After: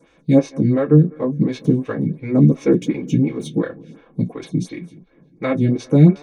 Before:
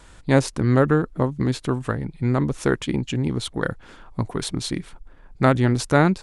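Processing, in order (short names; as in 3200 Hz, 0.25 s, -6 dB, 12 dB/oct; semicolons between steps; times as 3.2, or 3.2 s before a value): 1.48–3.63 sample leveller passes 1; dark delay 0.2 s, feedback 56%, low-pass 2200 Hz, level -23 dB; reverb, pre-delay 3 ms, DRR -5 dB; photocell phaser 2.8 Hz; gain -12 dB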